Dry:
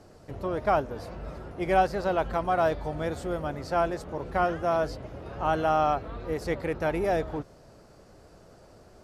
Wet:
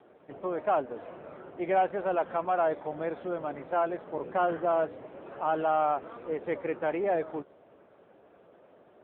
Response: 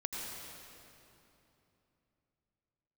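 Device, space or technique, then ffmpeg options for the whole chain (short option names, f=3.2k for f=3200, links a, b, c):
telephone: -filter_complex "[0:a]asettb=1/sr,asplit=3[a][b][c];[a]atrim=end=4.124[d];[b]atrim=start=4.12:end=4.85,asetpts=PTS-STARTPTS,afade=t=in:d=0.004:c=qsin,afade=t=out:st=0.726:d=0.004:c=qsin,lowshelf=f=440:g=4[e];[c]atrim=start=4.846[f];[d][e]acrossfade=d=0.004:c1=hsin:c2=qsin[g];[g][f]acrossfade=d=0.004:c1=qsin:c2=hsin,highpass=260,lowpass=3.2k,asoftclip=type=tanh:threshold=-16dB" -ar 8000 -c:a libopencore_amrnb -b:a 6700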